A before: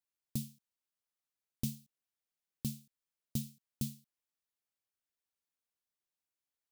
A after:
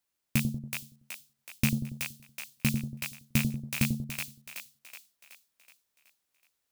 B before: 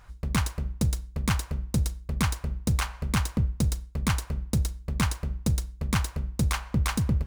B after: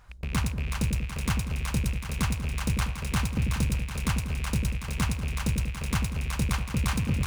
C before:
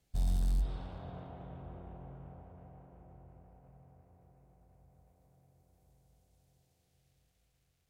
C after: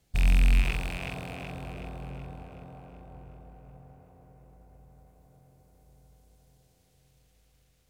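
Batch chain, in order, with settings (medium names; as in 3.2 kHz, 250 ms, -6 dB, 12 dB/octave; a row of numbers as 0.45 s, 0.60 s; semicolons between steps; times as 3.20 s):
rattle on loud lows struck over -36 dBFS, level -26 dBFS; two-band feedback delay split 560 Hz, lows 94 ms, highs 374 ms, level -4 dB; peak normalisation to -12 dBFS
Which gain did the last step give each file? +9.5 dB, -3.0 dB, +7.0 dB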